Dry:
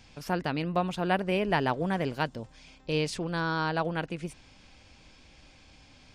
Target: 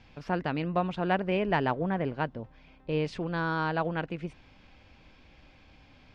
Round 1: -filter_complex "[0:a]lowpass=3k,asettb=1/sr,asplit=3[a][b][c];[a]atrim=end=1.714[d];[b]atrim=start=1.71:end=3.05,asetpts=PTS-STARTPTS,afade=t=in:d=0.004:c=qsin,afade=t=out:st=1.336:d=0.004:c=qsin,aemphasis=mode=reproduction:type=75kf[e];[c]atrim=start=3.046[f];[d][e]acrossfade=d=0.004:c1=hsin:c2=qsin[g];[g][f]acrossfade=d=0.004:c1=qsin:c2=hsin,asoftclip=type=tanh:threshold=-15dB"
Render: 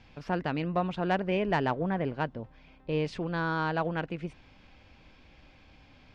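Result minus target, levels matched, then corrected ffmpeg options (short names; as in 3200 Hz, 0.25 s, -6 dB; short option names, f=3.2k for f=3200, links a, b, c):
soft clip: distortion +14 dB
-filter_complex "[0:a]lowpass=3k,asettb=1/sr,asplit=3[a][b][c];[a]atrim=end=1.714[d];[b]atrim=start=1.71:end=3.05,asetpts=PTS-STARTPTS,afade=t=in:d=0.004:c=qsin,afade=t=out:st=1.336:d=0.004:c=qsin,aemphasis=mode=reproduction:type=75kf[e];[c]atrim=start=3.046[f];[d][e]acrossfade=d=0.004:c1=hsin:c2=qsin[g];[g][f]acrossfade=d=0.004:c1=qsin:c2=hsin,asoftclip=type=tanh:threshold=-7dB"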